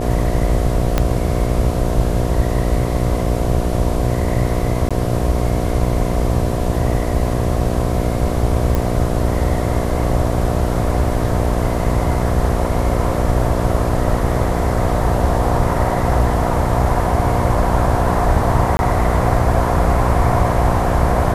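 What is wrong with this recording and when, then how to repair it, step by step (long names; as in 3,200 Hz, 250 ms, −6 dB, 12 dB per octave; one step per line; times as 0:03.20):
mains buzz 60 Hz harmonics 12 −21 dBFS
0:00.98: click −2 dBFS
0:04.89–0:04.91: drop-out 16 ms
0:08.75: click
0:18.77–0:18.79: drop-out 21 ms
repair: click removal
hum removal 60 Hz, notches 12
repair the gap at 0:04.89, 16 ms
repair the gap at 0:18.77, 21 ms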